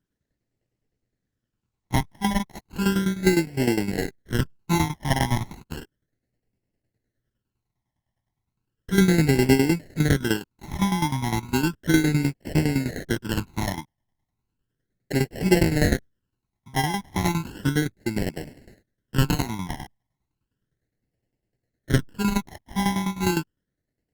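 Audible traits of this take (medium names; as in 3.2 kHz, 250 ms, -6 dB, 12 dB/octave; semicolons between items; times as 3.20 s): aliases and images of a low sample rate 1.2 kHz, jitter 0%; phasing stages 12, 0.34 Hz, lowest notch 450–1200 Hz; tremolo saw down 9.8 Hz, depth 75%; Opus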